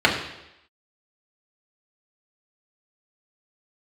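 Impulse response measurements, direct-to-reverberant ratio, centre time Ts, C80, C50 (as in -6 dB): -3.0 dB, 29 ms, 9.0 dB, 6.5 dB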